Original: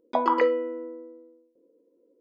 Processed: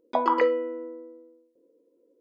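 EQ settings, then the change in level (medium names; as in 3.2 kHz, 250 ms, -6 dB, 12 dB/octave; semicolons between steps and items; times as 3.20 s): peaking EQ 210 Hz -2.5 dB; 0.0 dB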